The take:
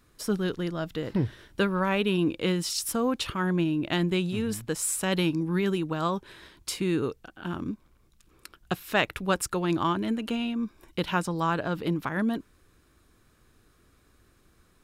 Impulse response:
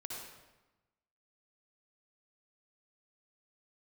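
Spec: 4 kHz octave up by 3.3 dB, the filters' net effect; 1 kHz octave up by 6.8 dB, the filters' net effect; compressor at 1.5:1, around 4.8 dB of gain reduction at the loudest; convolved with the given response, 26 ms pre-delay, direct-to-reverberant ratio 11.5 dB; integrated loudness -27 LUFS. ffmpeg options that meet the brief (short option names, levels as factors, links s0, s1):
-filter_complex "[0:a]equalizer=f=1000:t=o:g=8,equalizer=f=4000:t=o:g=4,acompressor=threshold=0.0355:ratio=1.5,asplit=2[s0][s1];[1:a]atrim=start_sample=2205,adelay=26[s2];[s1][s2]afir=irnorm=-1:irlink=0,volume=0.299[s3];[s0][s3]amix=inputs=2:normalize=0,volume=1.26"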